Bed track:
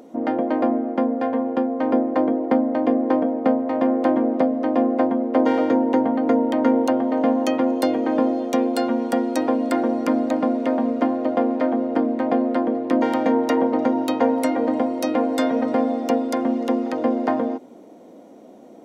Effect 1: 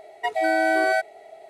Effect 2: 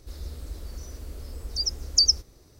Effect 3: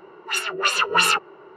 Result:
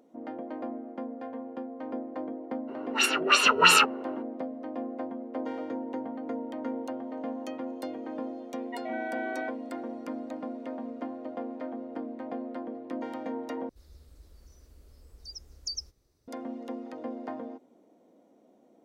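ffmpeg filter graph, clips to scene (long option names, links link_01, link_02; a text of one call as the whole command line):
ffmpeg -i bed.wav -i cue0.wav -i cue1.wav -i cue2.wav -filter_complex "[0:a]volume=-16.5dB[link_01];[1:a]aresample=8000,aresample=44100[link_02];[link_01]asplit=2[link_03][link_04];[link_03]atrim=end=13.694[link_05];[2:a]atrim=end=2.59,asetpts=PTS-STARTPTS,volume=-16.5dB[link_06];[link_04]atrim=start=16.276[link_07];[3:a]atrim=end=1.56,asetpts=PTS-STARTPTS,volume=-0.5dB,afade=type=in:duration=0.02,afade=type=out:start_time=1.54:duration=0.02,adelay=2670[link_08];[link_02]atrim=end=1.49,asetpts=PTS-STARTPTS,volume=-14dB,afade=type=in:duration=0.004:curve=hsin,afade=type=out:start_time=1.486:duration=0.004:curve=hsin,adelay=8490[link_09];[link_05][link_06]acrossfade=duration=0.004:curve1=hsin:curve2=hsin[link_10];[link_10][link_07]acrossfade=duration=0.004:curve1=hsin:curve2=hsin[link_11];[link_11][link_08][link_09]amix=inputs=3:normalize=0" out.wav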